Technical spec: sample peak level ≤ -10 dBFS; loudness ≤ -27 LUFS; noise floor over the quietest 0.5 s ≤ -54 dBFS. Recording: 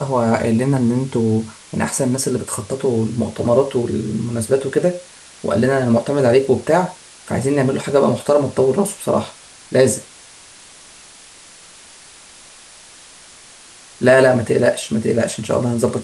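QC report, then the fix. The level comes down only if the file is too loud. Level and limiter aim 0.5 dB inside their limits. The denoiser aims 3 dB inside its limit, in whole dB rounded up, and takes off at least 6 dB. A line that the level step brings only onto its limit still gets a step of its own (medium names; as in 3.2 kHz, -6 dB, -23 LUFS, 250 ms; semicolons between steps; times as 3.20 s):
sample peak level -2.5 dBFS: fail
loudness -17.5 LUFS: fail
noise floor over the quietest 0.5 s -43 dBFS: fail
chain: noise reduction 6 dB, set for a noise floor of -43 dBFS; trim -10 dB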